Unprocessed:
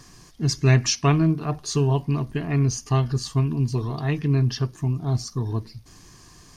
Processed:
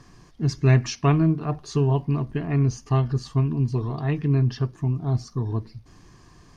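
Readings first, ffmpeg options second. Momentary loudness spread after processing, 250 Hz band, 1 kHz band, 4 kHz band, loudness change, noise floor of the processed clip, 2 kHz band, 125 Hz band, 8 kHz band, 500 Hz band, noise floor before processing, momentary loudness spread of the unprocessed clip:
8 LU, 0.0 dB, -1.0 dB, -8.0 dB, -0.5 dB, -53 dBFS, -3.0 dB, 0.0 dB, under -10 dB, 0.0 dB, -50 dBFS, 8 LU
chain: -af "lowpass=f=1.9k:p=1"

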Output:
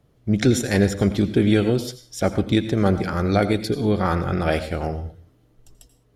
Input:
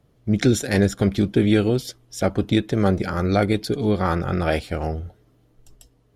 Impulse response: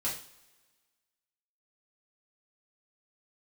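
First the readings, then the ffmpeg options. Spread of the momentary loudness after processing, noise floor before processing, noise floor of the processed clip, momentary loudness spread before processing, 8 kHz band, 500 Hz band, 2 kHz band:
9 LU, -60 dBFS, -60 dBFS, 9 LU, +0.5 dB, 0.0 dB, 0.0 dB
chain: -filter_complex "[0:a]asplit=2[a][b];[1:a]atrim=start_sample=2205,atrim=end_sample=6174,adelay=82[c];[b][c]afir=irnorm=-1:irlink=0,volume=-16dB[d];[a][d]amix=inputs=2:normalize=0"

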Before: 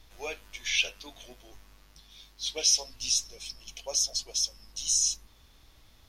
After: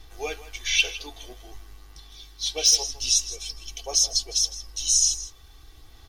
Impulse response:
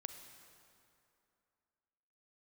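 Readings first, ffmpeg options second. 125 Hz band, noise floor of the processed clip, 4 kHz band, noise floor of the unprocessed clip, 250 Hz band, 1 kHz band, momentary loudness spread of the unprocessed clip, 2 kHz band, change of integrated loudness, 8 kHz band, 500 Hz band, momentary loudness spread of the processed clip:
n/a, -50 dBFS, +5.5 dB, -59 dBFS, +5.0 dB, +7.0 dB, 17 LU, +5.0 dB, +5.5 dB, +6.0 dB, +5.0 dB, 16 LU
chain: -af "aecho=1:1:161:0.178,asoftclip=type=hard:threshold=-15.5dB,aphaser=in_gain=1:out_gain=1:delay=2.4:decay=0.23:speed=0.5:type=sinusoidal,equalizer=f=2.4k:w=4:g=-3,aecho=1:1:2.6:0.64,volume=4dB"

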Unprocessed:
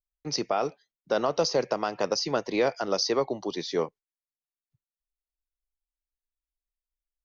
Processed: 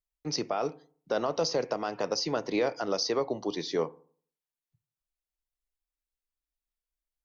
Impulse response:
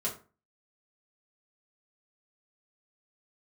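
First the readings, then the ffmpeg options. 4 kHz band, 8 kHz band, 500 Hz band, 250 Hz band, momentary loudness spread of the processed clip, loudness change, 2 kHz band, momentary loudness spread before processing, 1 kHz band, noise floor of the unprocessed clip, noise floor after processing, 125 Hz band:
-2.5 dB, n/a, -3.0 dB, -1.5 dB, 5 LU, -3.0 dB, -3.5 dB, 6 LU, -3.5 dB, under -85 dBFS, under -85 dBFS, -1.5 dB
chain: -filter_complex "[0:a]alimiter=limit=-17.5dB:level=0:latency=1:release=79,asplit=2[a][b];[1:a]atrim=start_sample=2205,asetrate=31311,aresample=44100,lowpass=2.3k[c];[b][c]afir=irnorm=-1:irlink=0,volume=-20dB[d];[a][d]amix=inputs=2:normalize=0,volume=-1.5dB"

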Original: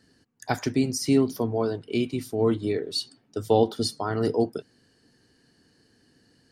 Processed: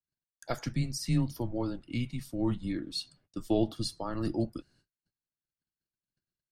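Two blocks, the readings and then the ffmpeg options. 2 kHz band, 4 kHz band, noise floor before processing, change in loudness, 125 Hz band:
-8.5 dB, -7.0 dB, -64 dBFS, -7.5 dB, -2.0 dB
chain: -af "agate=range=-35dB:threshold=-57dB:ratio=16:detection=peak,afreqshift=-120,volume=-7dB"

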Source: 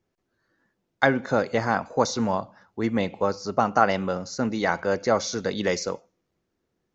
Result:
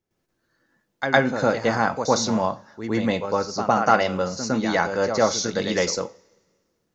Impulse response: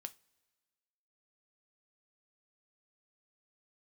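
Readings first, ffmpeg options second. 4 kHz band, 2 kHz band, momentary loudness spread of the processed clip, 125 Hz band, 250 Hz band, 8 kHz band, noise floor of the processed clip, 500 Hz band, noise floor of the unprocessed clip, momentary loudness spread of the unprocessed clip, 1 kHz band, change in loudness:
+5.0 dB, +2.5 dB, 8 LU, +2.0 dB, +2.0 dB, n/a, -75 dBFS, +2.5 dB, -78 dBFS, 8 LU, +2.5 dB, +2.5 dB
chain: -filter_complex "[0:a]highshelf=f=4.9k:g=6.5,asplit=2[a][b];[1:a]atrim=start_sample=2205,adelay=108[c];[b][c]afir=irnorm=-1:irlink=0,volume=13dB[d];[a][d]amix=inputs=2:normalize=0,volume=-7dB"

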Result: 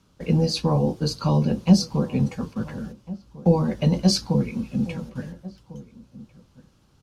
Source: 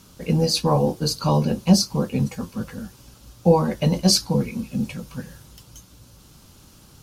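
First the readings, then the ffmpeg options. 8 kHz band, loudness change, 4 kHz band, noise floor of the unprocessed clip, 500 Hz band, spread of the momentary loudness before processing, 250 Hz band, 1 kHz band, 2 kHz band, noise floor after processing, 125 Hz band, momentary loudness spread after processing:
-7.5 dB, -1.5 dB, -5.0 dB, -51 dBFS, -3.5 dB, 16 LU, 0.0 dB, -5.5 dB, -2.5 dB, -60 dBFS, +0.5 dB, 19 LU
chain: -filter_complex "[0:a]agate=range=-10dB:threshold=-38dB:ratio=16:detection=peak,aemphasis=mode=reproduction:type=50fm,acrossover=split=360|3000[a][b][c];[b]acompressor=threshold=-30dB:ratio=2[d];[a][d][c]amix=inputs=3:normalize=0,asplit=2[e][f];[f]adelay=1399,volume=-18dB,highshelf=f=4k:g=-31.5[g];[e][g]amix=inputs=2:normalize=0"

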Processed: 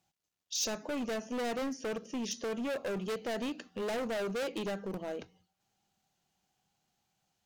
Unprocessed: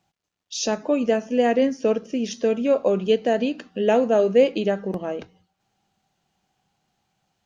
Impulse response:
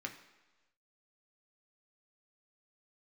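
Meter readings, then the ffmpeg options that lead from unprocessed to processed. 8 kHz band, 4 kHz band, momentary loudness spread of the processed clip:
n/a, -7.0 dB, 5 LU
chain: -af "volume=24dB,asoftclip=hard,volume=-24dB,aemphasis=mode=production:type=cd,volume=-8.5dB"

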